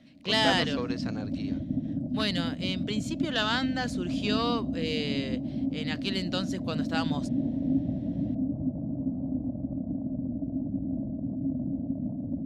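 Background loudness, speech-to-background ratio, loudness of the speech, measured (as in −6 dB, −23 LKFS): −32.0 LKFS, 1.0 dB, −31.0 LKFS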